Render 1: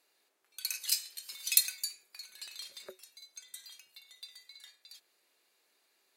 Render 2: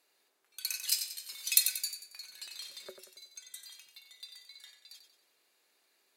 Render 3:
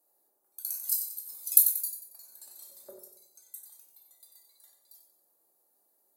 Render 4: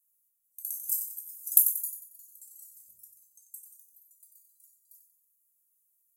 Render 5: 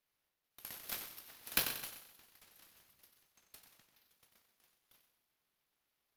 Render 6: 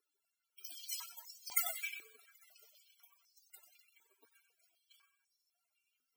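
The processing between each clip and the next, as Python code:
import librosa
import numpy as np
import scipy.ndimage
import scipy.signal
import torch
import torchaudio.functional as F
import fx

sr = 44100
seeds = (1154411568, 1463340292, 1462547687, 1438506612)

y1 = fx.echo_feedback(x, sr, ms=92, feedback_pct=42, wet_db=-8.5)
y2 = fx.curve_eq(y1, sr, hz=(320.0, 790.0, 2600.0, 13000.0), db=(0, 4, -25, 12))
y2 = fx.room_shoebox(y2, sr, seeds[0], volume_m3=430.0, walls='furnished', distance_m=2.4)
y2 = y2 * 10.0 ** (-5.0 / 20.0)
y3 = scipy.signal.sosfilt(scipy.signal.ellip(3, 1.0, 40, [130.0, 6600.0], 'bandstop', fs=sr, output='sos'), y2)
y4 = scipy.signal.medfilt(y3, 5)
y4 = fx.high_shelf(y4, sr, hz=11000.0, db=-8.5)
y4 = fx.echo_feedback(y4, sr, ms=129, feedback_pct=40, wet_db=-14.0)
y4 = y4 * 10.0 ** (-2.0 / 20.0)
y5 = fx.bit_reversed(y4, sr, seeds[1], block=256)
y5 = fx.spec_topn(y5, sr, count=64)
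y5 = fx.filter_held_highpass(y5, sr, hz=4.0, low_hz=360.0, high_hz=5100.0)
y5 = y5 * 10.0 ** (5.5 / 20.0)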